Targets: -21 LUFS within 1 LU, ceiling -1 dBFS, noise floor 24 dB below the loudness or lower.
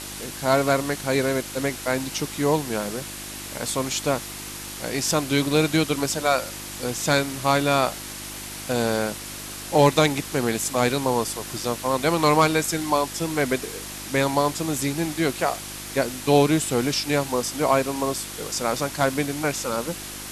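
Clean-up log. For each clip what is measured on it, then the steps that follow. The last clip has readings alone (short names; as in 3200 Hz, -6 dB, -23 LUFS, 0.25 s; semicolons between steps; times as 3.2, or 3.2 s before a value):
hum 50 Hz; harmonics up to 350 Hz; hum level -41 dBFS; noise floor -36 dBFS; noise floor target -48 dBFS; loudness -23.5 LUFS; peak -5.5 dBFS; loudness target -21.0 LUFS
-> de-hum 50 Hz, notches 7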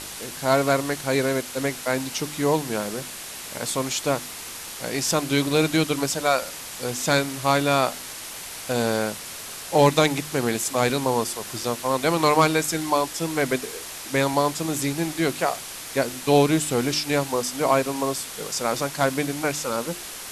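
hum none; noise floor -37 dBFS; noise floor target -48 dBFS
-> denoiser 11 dB, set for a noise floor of -37 dBFS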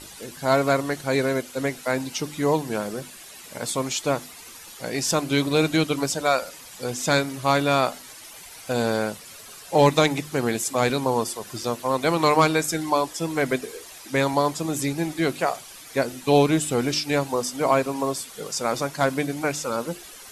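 noise floor -43 dBFS; noise floor target -48 dBFS
-> denoiser 6 dB, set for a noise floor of -43 dBFS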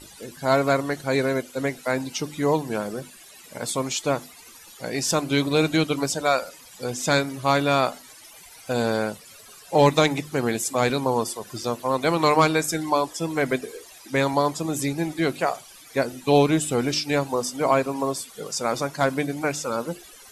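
noise floor -47 dBFS; noise floor target -48 dBFS
-> denoiser 6 dB, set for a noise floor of -47 dBFS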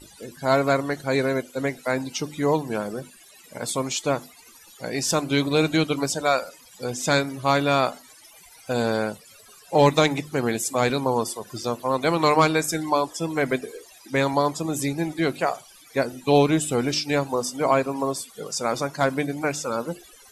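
noise floor -50 dBFS; loudness -24.0 LUFS; peak -6.5 dBFS; loudness target -21.0 LUFS
-> gain +3 dB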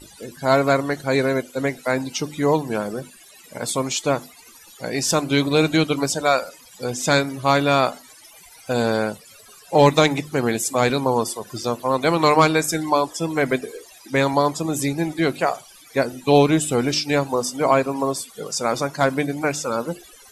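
loudness -21.0 LUFS; peak -3.5 dBFS; noise floor -47 dBFS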